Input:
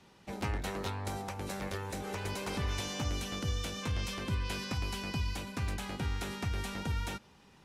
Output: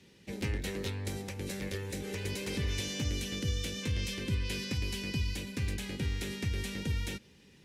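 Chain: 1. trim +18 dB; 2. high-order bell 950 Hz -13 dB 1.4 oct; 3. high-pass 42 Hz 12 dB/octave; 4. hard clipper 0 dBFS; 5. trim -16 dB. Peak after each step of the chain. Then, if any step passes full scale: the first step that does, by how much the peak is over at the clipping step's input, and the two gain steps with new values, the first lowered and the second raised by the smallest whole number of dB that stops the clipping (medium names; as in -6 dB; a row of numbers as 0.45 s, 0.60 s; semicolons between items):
-3.0 dBFS, -4.0 dBFS, -4.0 dBFS, -4.0 dBFS, -20.0 dBFS; nothing clips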